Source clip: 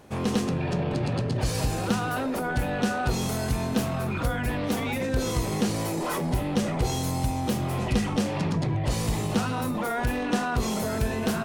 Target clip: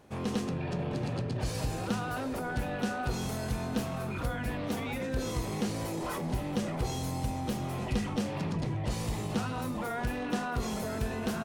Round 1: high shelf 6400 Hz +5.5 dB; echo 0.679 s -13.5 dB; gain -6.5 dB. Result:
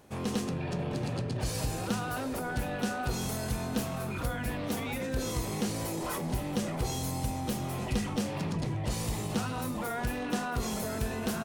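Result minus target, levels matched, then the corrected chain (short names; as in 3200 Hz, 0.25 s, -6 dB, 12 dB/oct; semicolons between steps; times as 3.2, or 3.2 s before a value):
8000 Hz band +4.5 dB
high shelf 6400 Hz -2.5 dB; echo 0.679 s -13.5 dB; gain -6.5 dB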